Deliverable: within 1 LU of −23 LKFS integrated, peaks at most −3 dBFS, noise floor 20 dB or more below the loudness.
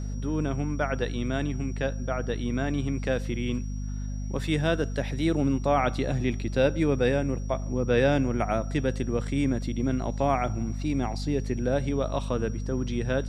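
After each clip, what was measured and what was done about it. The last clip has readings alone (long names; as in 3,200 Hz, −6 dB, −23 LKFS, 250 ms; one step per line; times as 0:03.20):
mains hum 50 Hz; hum harmonics up to 250 Hz; level of the hum −30 dBFS; interfering tone 5,700 Hz; level of the tone −52 dBFS; integrated loudness −28.0 LKFS; sample peak −10.5 dBFS; target loudness −23.0 LKFS
→ hum removal 50 Hz, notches 5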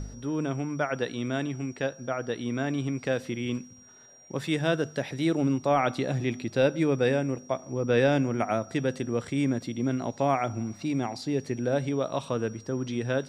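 mains hum none found; interfering tone 5,700 Hz; level of the tone −52 dBFS
→ notch filter 5,700 Hz, Q 30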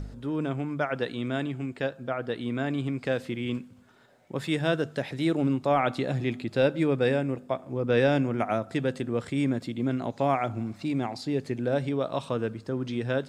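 interfering tone none found; integrated loudness −28.5 LKFS; sample peak −11.5 dBFS; target loudness −23.0 LKFS
→ level +5.5 dB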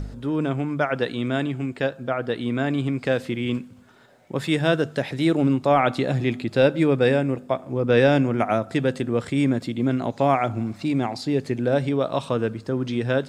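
integrated loudness −23.0 LKFS; sample peak −6.0 dBFS; background noise floor −47 dBFS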